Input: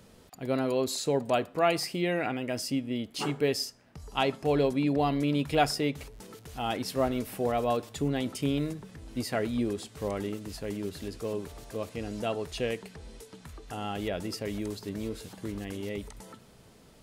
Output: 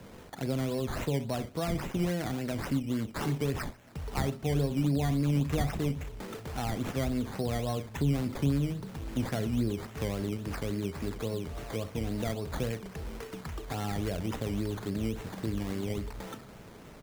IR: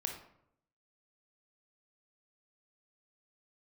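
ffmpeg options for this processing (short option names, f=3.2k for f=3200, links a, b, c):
-filter_complex "[0:a]aecho=1:1:36|68:0.237|0.15,acrusher=samples=13:mix=1:aa=0.000001:lfo=1:lforange=7.8:lforate=3.6,acrossover=split=190[a][b];[b]acompressor=threshold=-42dB:ratio=4[c];[a][c]amix=inputs=2:normalize=0,volume=6.5dB"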